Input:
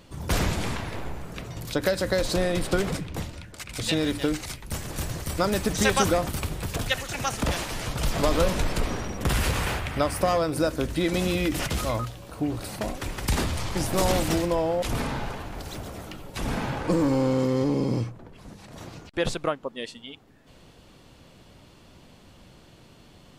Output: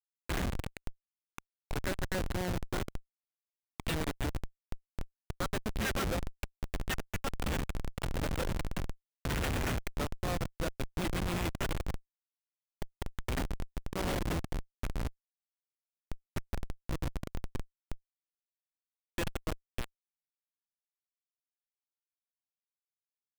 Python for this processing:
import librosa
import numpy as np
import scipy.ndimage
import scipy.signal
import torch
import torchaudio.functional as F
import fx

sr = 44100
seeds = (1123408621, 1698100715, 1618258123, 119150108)

y = fx.band_shelf(x, sr, hz=2300.0, db=13.5, octaves=1.7)
y = fx.schmitt(y, sr, flips_db=-15.5)
y = F.gain(torch.from_numpy(y), -8.0).numpy()